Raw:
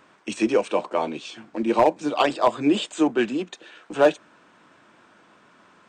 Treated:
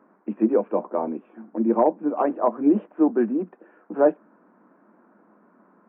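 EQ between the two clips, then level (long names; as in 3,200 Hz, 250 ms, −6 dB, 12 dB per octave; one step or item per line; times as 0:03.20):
Gaussian smoothing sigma 6.7 samples
parametric band 78 Hz −10.5 dB 1.5 octaves
low shelf with overshoot 150 Hz −10 dB, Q 3
0.0 dB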